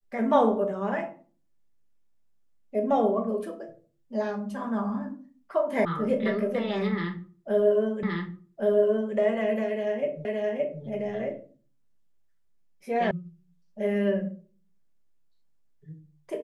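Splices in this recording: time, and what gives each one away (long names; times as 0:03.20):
0:05.85: cut off before it has died away
0:08.03: the same again, the last 1.12 s
0:10.25: the same again, the last 0.57 s
0:13.11: cut off before it has died away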